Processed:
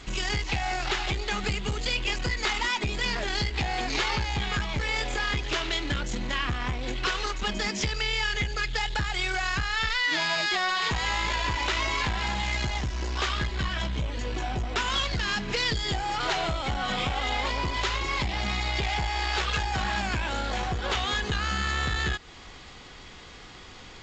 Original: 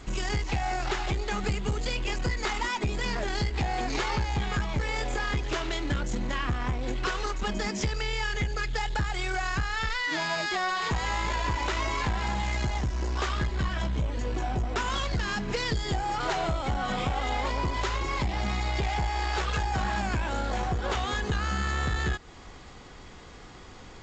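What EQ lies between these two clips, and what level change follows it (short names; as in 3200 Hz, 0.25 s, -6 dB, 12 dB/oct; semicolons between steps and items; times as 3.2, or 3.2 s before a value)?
bell 3300 Hz +8.5 dB 2 oct; -1.5 dB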